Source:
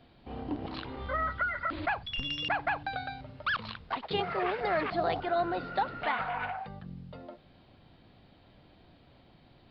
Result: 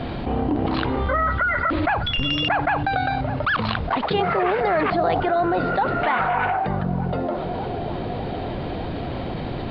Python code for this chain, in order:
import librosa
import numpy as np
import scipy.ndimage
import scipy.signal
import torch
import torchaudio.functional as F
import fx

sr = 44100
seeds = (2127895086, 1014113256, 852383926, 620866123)

y = fx.lowpass(x, sr, hz=1800.0, slope=6)
y = fx.echo_banded(y, sr, ms=604, feedback_pct=70, hz=430.0, wet_db=-18)
y = fx.env_flatten(y, sr, amount_pct=70)
y = y * librosa.db_to_amplitude(7.5)